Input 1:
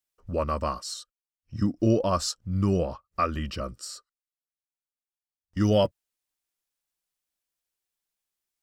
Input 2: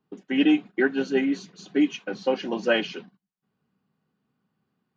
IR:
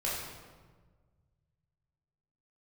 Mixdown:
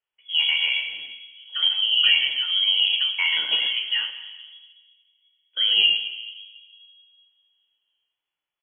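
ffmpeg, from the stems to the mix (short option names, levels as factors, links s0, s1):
-filter_complex "[0:a]equalizer=f=360:t=o:w=2.9:g=6.5,alimiter=limit=0.2:level=0:latency=1:release=68,volume=0.794,asplit=4[s0][s1][s2][s3];[s1]volume=0.562[s4];[s2]volume=0.668[s5];[1:a]lowpass=f=1700:w=0.5412,lowpass=f=1700:w=1.3066,acompressor=threshold=0.0631:ratio=6,adelay=1250,volume=1.06,asplit=2[s6][s7];[s7]volume=0.251[s8];[s3]apad=whole_len=274007[s9];[s6][s9]sidechaingate=range=0.0224:threshold=0.00126:ratio=16:detection=peak[s10];[2:a]atrim=start_sample=2205[s11];[s4][s8]amix=inputs=2:normalize=0[s12];[s12][s11]afir=irnorm=-1:irlink=0[s13];[s5]aecho=0:1:116:1[s14];[s0][s10][s13][s14]amix=inputs=4:normalize=0,equalizer=f=130:t=o:w=0.55:g=-12,lowpass=f=2900:t=q:w=0.5098,lowpass=f=2900:t=q:w=0.6013,lowpass=f=2900:t=q:w=0.9,lowpass=f=2900:t=q:w=2.563,afreqshift=-3400"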